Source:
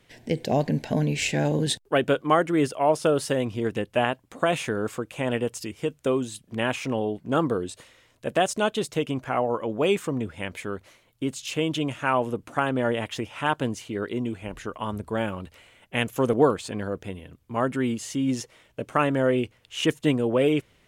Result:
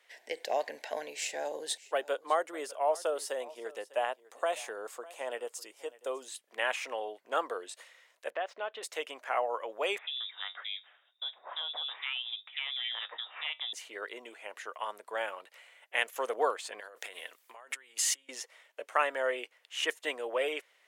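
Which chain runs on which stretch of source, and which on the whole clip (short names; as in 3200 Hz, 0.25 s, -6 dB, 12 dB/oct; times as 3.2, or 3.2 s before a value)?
1.1–6.28 bell 2100 Hz -9.5 dB 1.6 oct + echo 0.601 s -20 dB
8.3–8.83 median filter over 3 samples + air absorption 340 m + compressor 2.5:1, threshold -26 dBFS
9.98–13.73 resonator 99 Hz, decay 0.16 s, mix 50% + compressor 2.5:1, threshold -30 dBFS + inverted band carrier 3700 Hz
16.8–18.29 negative-ratio compressor -38 dBFS + tilt +2.5 dB/oct + Doppler distortion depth 0.11 ms
whole clip: HPF 540 Hz 24 dB/oct; bell 1900 Hz +5.5 dB 0.36 oct; gain -4.5 dB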